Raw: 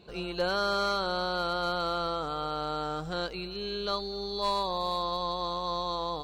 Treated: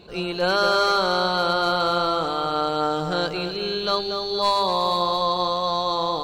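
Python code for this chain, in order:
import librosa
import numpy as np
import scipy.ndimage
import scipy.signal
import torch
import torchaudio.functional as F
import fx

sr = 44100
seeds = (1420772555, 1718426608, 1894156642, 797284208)

y = fx.hum_notches(x, sr, base_hz=50, count=4)
y = fx.echo_feedback(y, sr, ms=237, feedback_pct=40, wet_db=-8.0)
y = fx.attack_slew(y, sr, db_per_s=180.0)
y = F.gain(torch.from_numpy(y), 8.5).numpy()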